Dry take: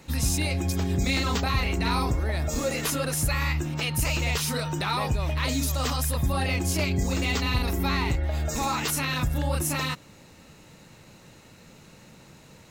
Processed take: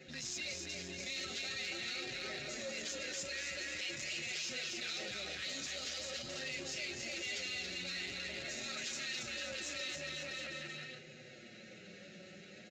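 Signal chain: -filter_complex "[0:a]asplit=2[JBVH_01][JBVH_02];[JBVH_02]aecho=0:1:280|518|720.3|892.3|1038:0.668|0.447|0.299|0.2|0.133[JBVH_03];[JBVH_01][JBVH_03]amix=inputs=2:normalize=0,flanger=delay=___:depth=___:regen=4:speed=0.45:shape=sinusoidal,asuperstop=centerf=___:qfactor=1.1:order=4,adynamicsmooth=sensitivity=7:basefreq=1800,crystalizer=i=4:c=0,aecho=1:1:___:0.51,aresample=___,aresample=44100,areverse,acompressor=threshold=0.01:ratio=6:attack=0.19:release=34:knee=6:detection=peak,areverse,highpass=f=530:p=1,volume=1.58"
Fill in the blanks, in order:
7.8, 2.9, 1000, 5.4, 16000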